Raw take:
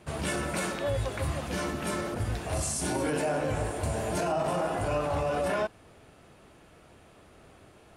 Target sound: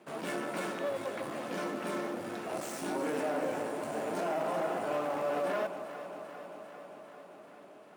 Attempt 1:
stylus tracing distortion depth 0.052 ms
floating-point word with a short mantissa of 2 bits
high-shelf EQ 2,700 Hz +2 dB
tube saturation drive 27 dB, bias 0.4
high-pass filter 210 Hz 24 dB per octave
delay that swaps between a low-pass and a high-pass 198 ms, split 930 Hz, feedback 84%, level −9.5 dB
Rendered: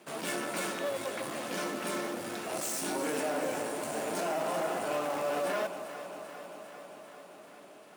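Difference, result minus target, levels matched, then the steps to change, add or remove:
4,000 Hz band +5.0 dB
change: high-shelf EQ 2,700 Hz −9 dB

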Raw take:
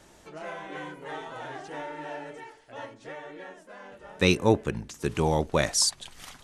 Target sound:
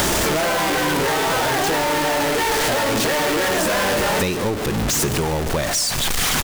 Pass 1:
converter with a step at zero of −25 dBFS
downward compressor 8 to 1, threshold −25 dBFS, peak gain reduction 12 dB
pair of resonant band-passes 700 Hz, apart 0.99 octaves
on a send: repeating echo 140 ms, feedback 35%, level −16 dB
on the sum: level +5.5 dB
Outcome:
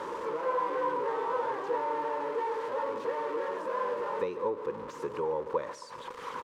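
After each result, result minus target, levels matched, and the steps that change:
500 Hz band +4.0 dB; converter with a step at zero: distortion −6 dB
remove: pair of resonant band-passes 700 Hz, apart 0.99 octaves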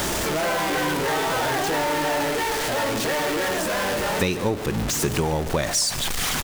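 converter with a step at zero: distortion −6 dB
change: converter with a step at zero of −15.5 dBFS

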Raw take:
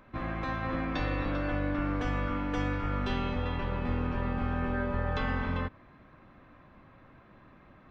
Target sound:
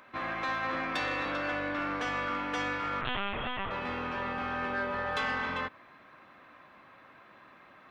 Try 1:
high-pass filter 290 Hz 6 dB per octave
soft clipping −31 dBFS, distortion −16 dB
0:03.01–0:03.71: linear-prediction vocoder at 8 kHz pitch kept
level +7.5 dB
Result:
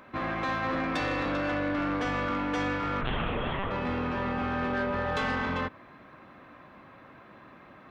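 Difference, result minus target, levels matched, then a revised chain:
250 Hz band +5.0 dB
high-pass filter 1,100 Hz 6 dB per octave
soft clipping −31 dBFS, distortion −21 dB
0:03.01–0:03.71: linear-prediction vocoder at 8 kHz pitch kept
level +7.5 dB

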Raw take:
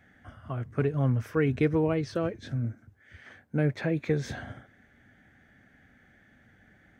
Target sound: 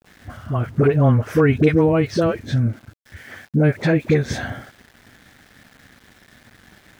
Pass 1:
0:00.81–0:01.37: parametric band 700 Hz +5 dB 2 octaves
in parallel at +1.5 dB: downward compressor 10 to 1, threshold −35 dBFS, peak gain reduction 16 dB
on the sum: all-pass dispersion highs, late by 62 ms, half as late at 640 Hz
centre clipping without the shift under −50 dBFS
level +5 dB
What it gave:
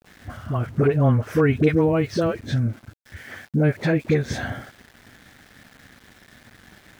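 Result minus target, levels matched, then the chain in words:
downward compressor: peak gain reduction +10 dB
0:00.81–0:01.37: parametric band 700 Hz +5 dB 2 octaves
in parallel at +1.5 dB: downward compressor 10 to 1, threshold −24 dBFS, peak gain reduction 6 dB
on the sum: all-pass dispersion highs, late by 62 ms, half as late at 640 Hz
centre clipping without the shift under −50 dBFS
level +5 dB

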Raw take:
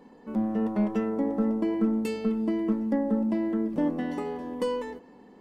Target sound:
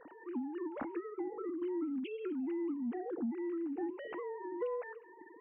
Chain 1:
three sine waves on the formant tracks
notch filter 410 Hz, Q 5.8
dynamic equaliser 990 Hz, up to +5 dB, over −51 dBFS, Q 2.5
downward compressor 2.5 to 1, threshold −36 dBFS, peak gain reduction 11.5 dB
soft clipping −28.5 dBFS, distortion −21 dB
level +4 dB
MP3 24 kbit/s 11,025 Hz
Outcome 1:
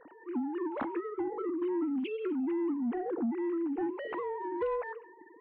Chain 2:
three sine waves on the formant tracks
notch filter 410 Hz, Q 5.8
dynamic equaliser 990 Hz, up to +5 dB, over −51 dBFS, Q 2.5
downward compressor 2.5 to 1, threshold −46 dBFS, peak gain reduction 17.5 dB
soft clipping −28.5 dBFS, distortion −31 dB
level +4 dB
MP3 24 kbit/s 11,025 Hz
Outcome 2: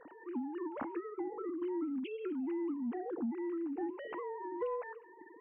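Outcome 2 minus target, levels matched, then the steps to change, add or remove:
1,000 Hz band +3.0 dB
remove: dynamic equaliser 990 Hz, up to +5 dB, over −51 dBFS, Q 2.5

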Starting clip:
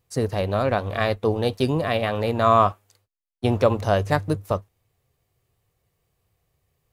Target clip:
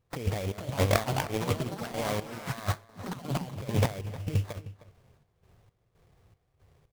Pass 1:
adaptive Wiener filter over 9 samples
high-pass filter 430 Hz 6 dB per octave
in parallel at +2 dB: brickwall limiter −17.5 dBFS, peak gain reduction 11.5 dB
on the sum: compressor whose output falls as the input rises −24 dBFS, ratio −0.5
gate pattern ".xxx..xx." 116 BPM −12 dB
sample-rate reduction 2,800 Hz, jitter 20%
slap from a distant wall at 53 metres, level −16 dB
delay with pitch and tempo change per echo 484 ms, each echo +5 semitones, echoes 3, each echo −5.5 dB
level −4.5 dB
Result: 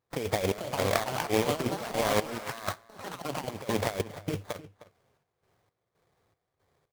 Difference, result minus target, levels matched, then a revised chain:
500 Hz band +2.5 dB
adaptive Wiener filter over 9 samples
in parallel at +2 dB: brickwall limiter −17.5 dBFS, peak gain reduction 13 dB
on the sum: compressor whose output falls as the input rises −24 dBFS, ratio −0.5
gate pattern ".xxx..xx." 116 BPM −12 dB
sample-rate reduction 2,800 Hz, jitter 20%
slap from a distant wall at 53 metres, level −16 dB
delay with pitch and tempo change per echo 484 ms, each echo +5 semitones, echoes 3, each echo −5.5 dB
level −4.5 dB

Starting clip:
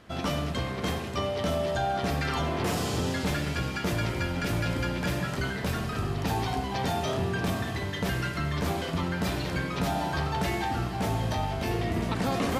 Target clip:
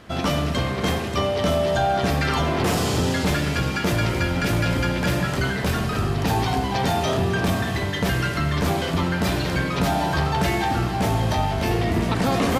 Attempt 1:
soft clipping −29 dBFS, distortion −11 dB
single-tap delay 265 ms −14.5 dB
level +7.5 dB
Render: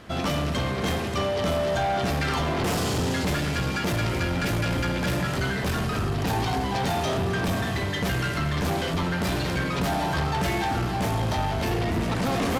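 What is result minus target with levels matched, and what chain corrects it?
soft clipping: distortion +16 dB
soft clipping −17.5 dBFS, distortion −27 dB
single-tap delay 265 ms −14.5 dB
level +7.5 dB

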